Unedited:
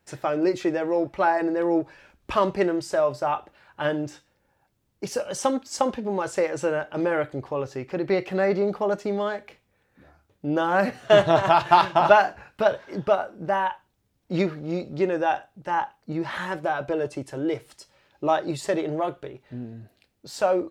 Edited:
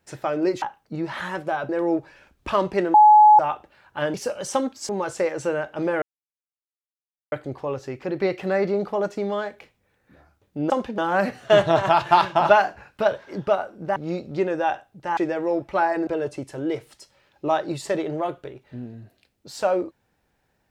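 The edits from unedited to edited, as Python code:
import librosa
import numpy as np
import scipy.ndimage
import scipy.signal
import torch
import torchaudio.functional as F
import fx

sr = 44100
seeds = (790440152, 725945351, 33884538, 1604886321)

y = fx.edit(x, sr, fx.swap(start_s=0.62, length_s=0.9, other_s=15.79, other_length_s=1.07),
    fx.bleep(start_s=2.77, length_s=0.45, hz=848.0, db=-8.0),
    fx.cut(start_s=3.97, length_s=1.07),
    fx.move(start_s=5.79, length_s=0.28, to_s=10.58),
    fx.insert_silence(at_s=7.2, length_s=1.3),
    fx.cut(start_s=13.56, length_s=1.02), tone=tone)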